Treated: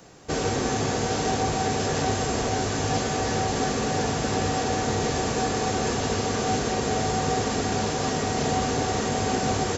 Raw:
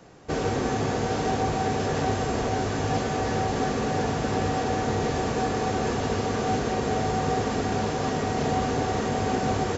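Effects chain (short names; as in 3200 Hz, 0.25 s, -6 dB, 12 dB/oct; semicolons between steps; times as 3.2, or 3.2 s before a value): high shelf 4300 Hz +11.5 dB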